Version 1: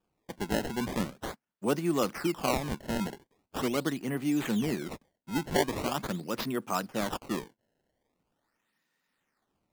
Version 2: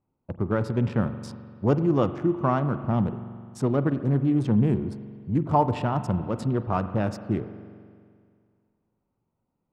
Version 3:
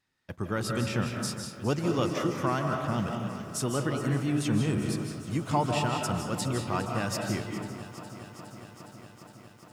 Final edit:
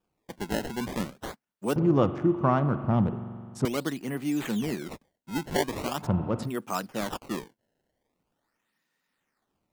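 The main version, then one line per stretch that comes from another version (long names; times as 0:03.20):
1
0:01.76–0:03.65: punch in from 2
0:06.04–0:06.47: punch in from 2, crossfade 0.10 s
not used: 3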